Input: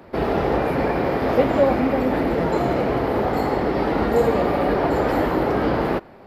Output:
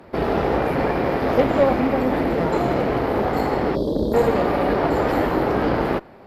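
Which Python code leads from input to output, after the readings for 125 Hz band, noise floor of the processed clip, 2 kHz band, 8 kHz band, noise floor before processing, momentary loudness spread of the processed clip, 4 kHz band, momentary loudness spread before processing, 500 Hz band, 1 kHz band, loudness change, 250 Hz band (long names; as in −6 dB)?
0.0 dB, −45 dBFS, +0.5 dB, can't be measured, −45 dBFS, 4 LU, +0.5 dB, 3 LU, 0.0 dB, 0.0 dB, 0.0 dB, 0.0 dB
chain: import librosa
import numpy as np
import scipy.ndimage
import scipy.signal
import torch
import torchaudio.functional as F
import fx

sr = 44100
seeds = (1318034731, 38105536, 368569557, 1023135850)

y = fx.spec_erase(x, sr, start_s=3.76, length_s=0.38, low_hz=660.0, high_hz=3200.0)
y = fx.cheby_harmonics(y, sr, harmonics=(6,), levels_db=(-23,), full_scale_db=-4.5)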